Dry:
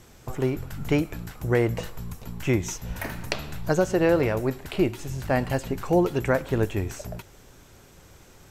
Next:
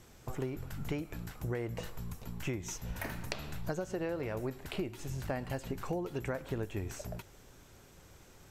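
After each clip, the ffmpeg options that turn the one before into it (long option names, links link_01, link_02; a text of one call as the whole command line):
ffmpeg -i in.wav -af "acompressor=threshold=-26dB:ratio=12,volume=-6dB" out.wav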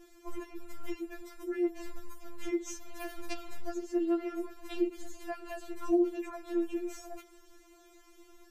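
ffmpeg -i in.wav -af "equalizer=frequency=230:width_type=o:width=2.6:gain=6.5,afftfilt=real='re*4*eq(mod(b,16),0)':imag='im*4*eq(mod(b,16),0)':win_size=2048:overlap=0.75" out.wav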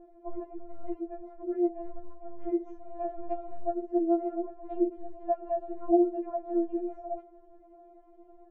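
ffmpeg -i in.wav -af "lowpass=frequency=630:width_type=q:width=7" out.wav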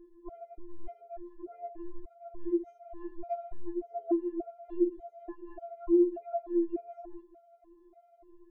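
ffmpeg -i in.wav -af "afftfilt=real='re*gt(sin(2*PI*1.7*pts/sr)*(1-2*mod(floor(b*sr/1024/410),2)),0)':imag='im*gt(sin(2*PI*1.7*pts/sr)*(1-2*mod(floor(b*sr/1024/410),2)),0)':win_size=1024:overlap=0.75" out.wav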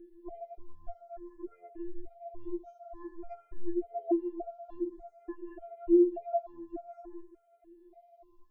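ffmpeg -i in.wav -filter_complex "[0:a]asplit=2[link_01][link_02];[link_02]afreqshift=0.52[link_03];[link_01][link_03]amix=inputs=2:normalize=1,volume=3dB" out.wav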